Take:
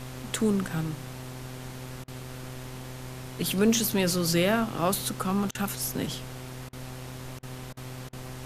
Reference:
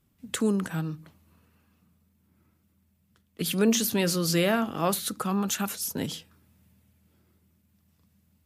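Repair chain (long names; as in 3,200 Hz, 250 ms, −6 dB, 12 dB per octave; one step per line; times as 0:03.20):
hum removal 127.7 Hz, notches 33
repair the gap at 0:02.04/0:05.51/0:06.69/0:07.39/0:07.73/0:08.09, 38 ms
broadband denoise 28 dB, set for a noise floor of −40 dBFS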